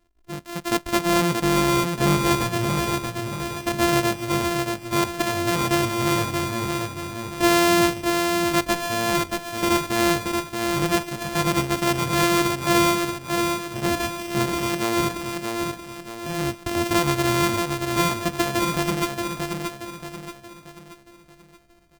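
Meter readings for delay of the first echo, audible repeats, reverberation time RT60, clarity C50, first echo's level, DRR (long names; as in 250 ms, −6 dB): 629 ms, 5, no reverb audible, no reverb audible, −4.5 dB, no reverb audible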